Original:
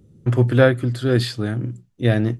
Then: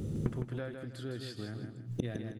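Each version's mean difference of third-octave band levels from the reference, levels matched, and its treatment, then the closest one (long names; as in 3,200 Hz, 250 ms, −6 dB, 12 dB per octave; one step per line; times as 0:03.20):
7.5 dB: mains-hum notches 60/120/180 Hz
downward compressor 12 to 1, threshold −22 dBFS, peak gain reduction 14.5 dB
gate with flip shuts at −32 dBFS, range −29 dB
on a send: repeating echo 159 ms, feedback 31%, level −6.5 dB
on the sum: level +15 dB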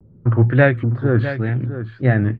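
5.5 dB: low-shelf EQ 150 Hz +8 dB
auto-filter low-pass saw up 1.2 Hz 860–2,700 Hz
tape wow and flutter 130 cents
on a send: single-tap delay 654 ms −11.5 dB
on the sum: level −2 dB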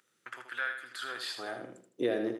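11.5 dB: downward compressor 6 to 1, threshold −28 dBFS, peak gain reduction 18 dB
high-pass filter sweep 1,500 Hz → 410 Hz, 0:00.87–0:01.93
on a send: repeating echo 79 ms, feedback 33%, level −7.5 dB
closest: second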